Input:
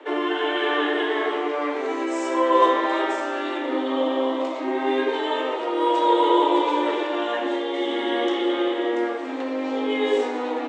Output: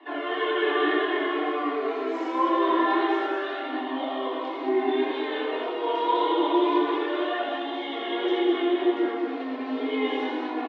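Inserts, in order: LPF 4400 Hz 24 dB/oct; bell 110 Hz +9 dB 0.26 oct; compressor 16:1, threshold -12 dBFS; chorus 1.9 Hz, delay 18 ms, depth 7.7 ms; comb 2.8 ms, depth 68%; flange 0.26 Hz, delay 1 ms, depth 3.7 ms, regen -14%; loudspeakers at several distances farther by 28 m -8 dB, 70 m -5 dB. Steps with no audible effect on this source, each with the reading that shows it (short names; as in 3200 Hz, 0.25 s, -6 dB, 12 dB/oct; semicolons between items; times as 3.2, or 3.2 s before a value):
bell 110 Hz: input band starts at 230 Hz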